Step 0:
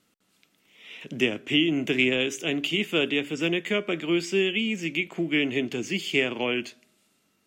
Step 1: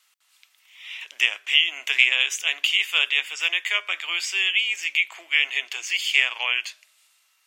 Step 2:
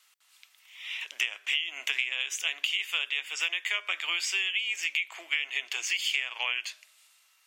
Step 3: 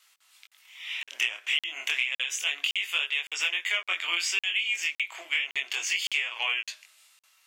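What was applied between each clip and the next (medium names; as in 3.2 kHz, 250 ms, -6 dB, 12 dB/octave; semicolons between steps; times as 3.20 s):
high-pass 1 kHz 24 dB/octave; peaking EQ 1.4 kHz -5 dB 0.4 oct; trim +7.5 dB
compression 10:1, threshold -25 dBFS, peak gain reduction 15 dB
chorus 0.31 Hz, delay 19 ms, depth 7.2 ms; in parallel at -11 dB: hard clipper -24 dBFS, distortion -18 dB; on the sum: crackling interface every 0.56 s, samples 2048, zero, from 0.47 s; trim +3 dB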